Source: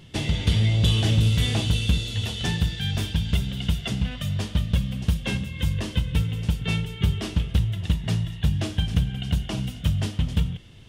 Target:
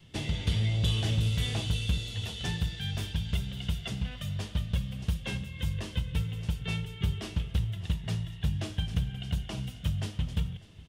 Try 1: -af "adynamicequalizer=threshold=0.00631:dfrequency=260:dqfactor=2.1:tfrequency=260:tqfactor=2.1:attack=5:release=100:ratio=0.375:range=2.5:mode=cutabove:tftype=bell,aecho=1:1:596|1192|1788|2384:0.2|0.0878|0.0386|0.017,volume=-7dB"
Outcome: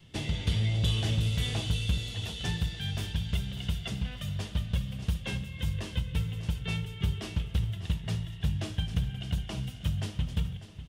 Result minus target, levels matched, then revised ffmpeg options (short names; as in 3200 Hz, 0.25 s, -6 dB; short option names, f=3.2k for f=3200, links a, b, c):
echo-to-direct +7.5 dB
-af "adynamicequalizer=threshold=0.00631:dfrequency=260:dqfactor=2.1:tfrequency=260:tqfactor=2.1:attack=5:release=100:ratio=0.375:range=2.5:mode=cutabove:tftype=bell,aecho=1:1:596|1192|1788:0.0841|0.037|0.0163,volume=-7dB"